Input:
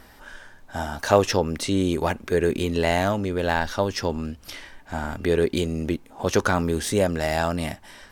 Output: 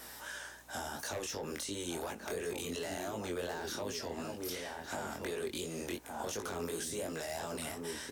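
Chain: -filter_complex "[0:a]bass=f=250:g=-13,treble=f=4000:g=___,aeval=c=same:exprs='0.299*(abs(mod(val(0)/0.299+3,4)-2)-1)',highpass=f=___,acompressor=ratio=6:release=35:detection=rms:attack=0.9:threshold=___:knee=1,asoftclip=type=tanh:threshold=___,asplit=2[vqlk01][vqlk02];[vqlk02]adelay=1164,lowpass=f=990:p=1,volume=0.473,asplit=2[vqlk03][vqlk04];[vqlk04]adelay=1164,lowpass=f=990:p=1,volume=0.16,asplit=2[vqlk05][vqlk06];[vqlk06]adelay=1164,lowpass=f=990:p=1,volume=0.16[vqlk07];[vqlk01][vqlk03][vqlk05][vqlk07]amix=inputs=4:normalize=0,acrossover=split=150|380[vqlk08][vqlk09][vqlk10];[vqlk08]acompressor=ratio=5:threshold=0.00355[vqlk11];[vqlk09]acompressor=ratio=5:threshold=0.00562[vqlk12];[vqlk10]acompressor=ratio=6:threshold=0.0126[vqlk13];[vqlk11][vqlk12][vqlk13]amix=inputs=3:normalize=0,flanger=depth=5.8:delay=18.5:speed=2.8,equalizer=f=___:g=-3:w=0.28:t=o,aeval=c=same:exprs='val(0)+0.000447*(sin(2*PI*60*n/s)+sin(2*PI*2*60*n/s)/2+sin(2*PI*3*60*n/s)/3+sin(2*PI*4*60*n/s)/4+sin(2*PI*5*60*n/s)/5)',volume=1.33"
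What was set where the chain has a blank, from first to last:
11, 97, 0.0631, 0.141, 4600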